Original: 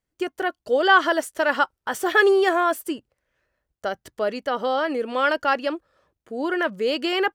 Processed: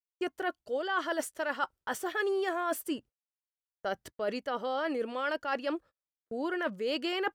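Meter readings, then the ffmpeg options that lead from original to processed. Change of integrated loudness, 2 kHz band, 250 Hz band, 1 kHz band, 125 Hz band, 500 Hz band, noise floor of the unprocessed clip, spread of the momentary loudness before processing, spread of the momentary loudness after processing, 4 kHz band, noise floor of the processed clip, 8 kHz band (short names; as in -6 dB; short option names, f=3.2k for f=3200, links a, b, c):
-11.5 dB, -12.5 dB, -8.5 dB, -12.0 dB, n/a, -10.5 dB, -84 dBFS, 14 LU, 7 LU, -10.5 dB, under -85 dBFS, -6.0 dB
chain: -af "agate=range=-40dB:threshold=-44dB:ratio=16:detection=peak,areverse,acompressor=threshold=-26dB:ratio=6,areverse,volume=-3dB"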